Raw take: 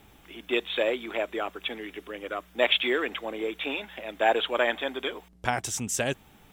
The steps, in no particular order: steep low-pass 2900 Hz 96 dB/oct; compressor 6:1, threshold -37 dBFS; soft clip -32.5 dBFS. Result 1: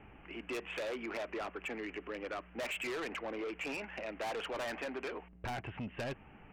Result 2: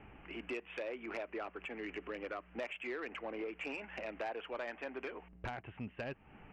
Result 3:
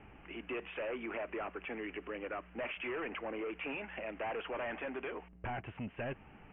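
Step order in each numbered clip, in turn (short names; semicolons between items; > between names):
steep low-pass > soft clip > compressor; compressor > steep low-pass > soft clip; soft clip > compressor > steep low-pass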